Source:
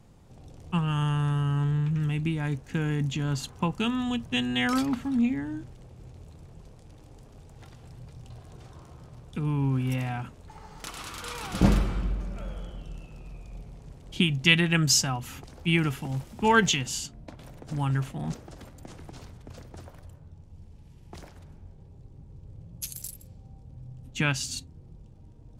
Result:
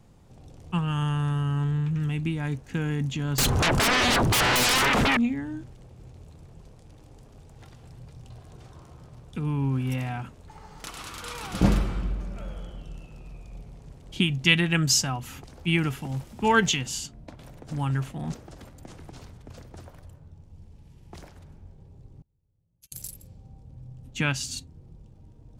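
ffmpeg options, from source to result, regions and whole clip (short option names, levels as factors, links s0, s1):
-filter_complex "[0:a]asettb=1/sr,asplit=3[s0][s1][s2];[s0]atrim=end=3.384[s3];[s1]atrim=start=3.38:end=5.17,asetpts=PTS-STARTPTS,afade=t=in:d=0.004:c=qsin,afade=t=out:st=1.786:d=0.004:c=qsin,tiltshelf=f=1400:g=3.5,acompressor=threshold=0.0631:ratio=10:attack=3.2:release=140:knee=1:detection=peak,aeval=exprs='0.119*sin(PI/2*10*val(0)/0.119)':c=same[s4];[s2]atrim=start=5.166[s5];[s3][s4]acrossfade=d=0.004:c1=hsin:c2=qsin[s6];[s6][s5]acrossfade=d=0.004:c1=qsin:c2=hsin,asettb=1/sr,asplit=3[s7][s8][s9];[s7]atrim=end=22.224[s10];[s8]atrim=start=22.22:end=22.92,asetpts=PTS-STARTPTS,afade=t=in:d=0.004:c=qsin,afade=t=out:st=0.696:d=0.004:c=qsin,agate=range=0.0398:threshold=0.02:ratio=16:release=100:detection=peak,acompressor=threshold=0.00112:ratio=2.5:attack=3.2:release=140:knee=1:detection=peak,bandreject=f=391.3:t=h:w=4,bandreject=f=782.6:t=h:w=4,bandreject=f=1173.9:t=h:w=4,bandreject=f=1565.2:t=h:w=4,bandreject=f=1956.5:t=h:w=4,bandreject=f=2347.8:t=h:w=4,bandreject=f=2739.1:t=h:w=4,bandreject=f=3130.4:t=h:w=4[s11];[s9]atrim=start=22.916[s12];[s10][s11]acrossfade=d=0.004:c1=hsin:c2=qsin[s13];[s13][s12]acrossfade=d=0.004:c1=qsin:c2=hsin"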